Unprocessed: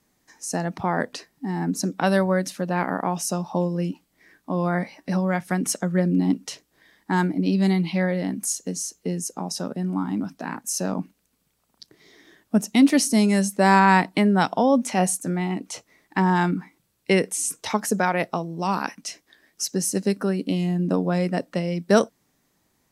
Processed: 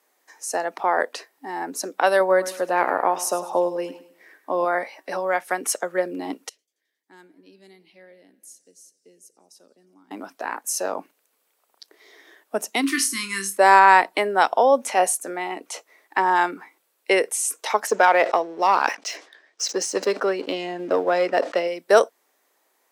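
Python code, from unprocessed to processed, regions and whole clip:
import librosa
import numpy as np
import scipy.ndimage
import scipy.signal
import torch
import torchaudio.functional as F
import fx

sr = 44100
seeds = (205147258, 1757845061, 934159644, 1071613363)

y = fx.chain(x, sr, fx.low_shelf(hz=400.0, db=5.0),
    fx.echo_feedback(ms=102, feedback_pct=37, wet_db=-14), at=(2.2, 4.65))
y = fx.chain(y, sr, fx.tone_stack(knobs='10-0-1'),
    fx.echo_warbled(ms=90, feedback_pct=72, rate_hz=2.8, cents=182, wet_db=-22.0), at=(6.49, 10.11))
y = fx.chain(y, sr, fx.brickwall_bandstop(low_hz=380.0, high_hz=1000.0),
    fx.room_flutter(wall_m=4.4, rt60_s=0.21), at=(12.81, 13.58))
y = fx.chain(y, sr, fx.lowpass(hz=6500.0, slope=24),
    fx.leveller(passes=1),
    fx.sustainer(db_per_s=140.0), at=(17.87, 21.68))
y = scipy.signal.sosfilt(scipy.signal.butter(4, 420.0, 'highpass', fs=sr, output='sos'), y)
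y = fx.peak_eq(y, sr, hz=5400.0, db=-5.5, octaves=1.7)
y = y * librosa.db_to_amplitude(5.0)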